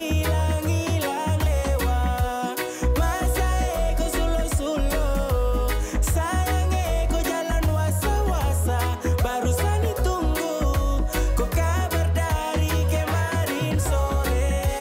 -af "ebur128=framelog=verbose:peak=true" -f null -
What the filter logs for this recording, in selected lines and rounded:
Integrated loudness:
  I:         -23.8 LUFS
  Threshold: -33.8 LUFS
Loudness range:
  LRA:         0.8 LU
  Threshold: -43.8 LUFS
  LRA low:   -24.3 LUFS
  LRA high:  -23.5 LUFS
True peak:
  Peak:      -12.4 dBFS